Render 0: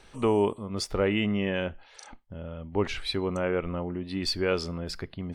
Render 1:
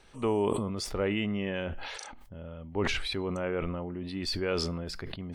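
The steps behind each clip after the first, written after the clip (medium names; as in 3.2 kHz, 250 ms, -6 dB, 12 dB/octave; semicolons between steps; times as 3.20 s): decay stretcher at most 27 dB/s; trim -4.5 dB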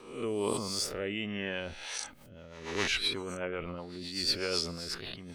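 reverse spectral sustain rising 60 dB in 0.68 s; tilt EQ +2 dB/octave; rotary cabinet horn 1.2 Hz, later 8 Hz, at 1.67 s; trim -1.5 dB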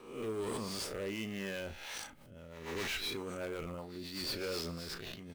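in parallel at -4.5 dB: sample-rate reducer 9.1 kHz, jitter 20%; on the sum: hard clipper -27.5 dBFS, distortion -10 dB; doubling 36 ms -12.5 dB; trim -6.5 dB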